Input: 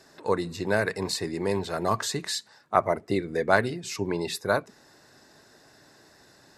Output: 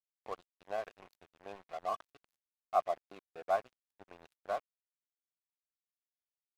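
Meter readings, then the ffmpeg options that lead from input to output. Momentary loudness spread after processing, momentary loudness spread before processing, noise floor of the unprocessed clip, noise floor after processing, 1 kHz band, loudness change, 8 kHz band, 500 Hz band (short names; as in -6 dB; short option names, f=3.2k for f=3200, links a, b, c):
19 LU, 7 LU, -57 dBFS, under -85 dBFS, -8.5 dB, -11.0 dB, under -25 dB, -12.5 dB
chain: -filter_complex "[0:a]acrusher=bits=5:mode=log:mix=0:aa=0.000001,asplit=3[a][b][c];[a]bandpass=f=730:t=q:w=8,volume=0dB[d];[b]bandpass=f=1.09k:t=q:w=8,volume=-6dB[e];[c]bandpass=f=2.44k:t=q:w=8,volume=-9dB[f];[d][e][f]amix=inputs=3:normalize=0,aeval=exprs='sgn(val(0))*max(abs(val(0))-0.00631,0)':c=same,volume=-2dB"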